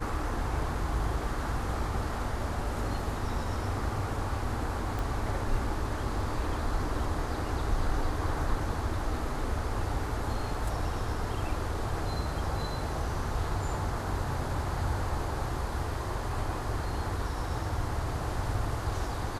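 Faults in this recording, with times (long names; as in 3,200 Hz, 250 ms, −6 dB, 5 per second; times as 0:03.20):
0:04.99: click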